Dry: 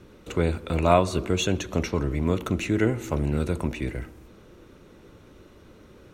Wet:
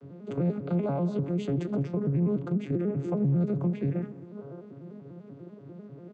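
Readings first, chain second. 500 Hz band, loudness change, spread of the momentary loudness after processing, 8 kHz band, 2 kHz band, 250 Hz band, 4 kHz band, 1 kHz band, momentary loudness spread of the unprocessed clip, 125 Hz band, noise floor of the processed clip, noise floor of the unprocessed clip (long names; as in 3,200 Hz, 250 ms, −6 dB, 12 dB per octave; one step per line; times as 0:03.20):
−6.0 dB, −3.5 dB, 19 LU, below −20 dB, −17.5 dB, −0.5 dB, below −15 dB, −14.0 dB, 11 LU, −1.0 dB, −48 dBFS, −52 dBFS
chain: vocoder with an arpeggio as carrier major triad, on C#3, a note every 98 ms
downward compressor 6 to 1, threshold −29 dBFS, peak gain reduction 11 dB
low-shelf EQ 460 Hz −5 dB
gain on a spectral selection 0:04.36–0:04.60, 400–1,600 Hz +8 dB
brickwall limiter −30.5 dBFS, peak gain reduction 7.5 dB
tilt shelving filter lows +8 dB, about 840 Hz
slap from a distant wall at 34 metres, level −20 dB
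level +5 dB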